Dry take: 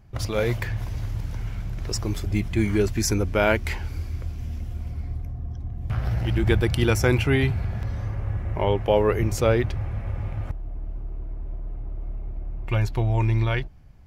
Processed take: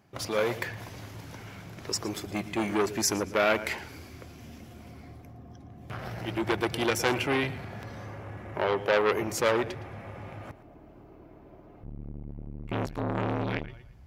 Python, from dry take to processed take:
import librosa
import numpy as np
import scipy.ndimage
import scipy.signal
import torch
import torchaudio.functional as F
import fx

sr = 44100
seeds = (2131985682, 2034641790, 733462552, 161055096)

y = fx.highpass(x, sr, hz=fx.steps((0.0, 230.0), (11.83, 43.0)), slope=12)
y = fx.echo_feedback(y, sr, ms=114, feedback_pct=28, wet_db=-17.0)
y = fx.transformer_sat(y, sr, knee_hz=2000.0)